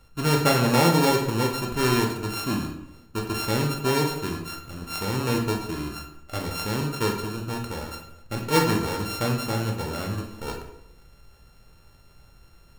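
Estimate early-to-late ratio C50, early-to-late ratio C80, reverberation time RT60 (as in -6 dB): 5.5 dB, 9.0 dB, 0.80 s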